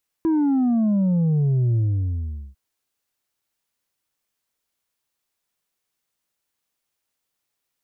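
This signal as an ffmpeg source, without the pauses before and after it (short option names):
-f lavfi -i "aevalsrc='0.141*clip((2.3-t)/0.79,0,1)*tanh(1.5*sin(2*PI*330*2.3/log(65/330)*(exp(log(65/330)*t/2.3)-1)))/tanh(1.5)':d=2.3:s=44100"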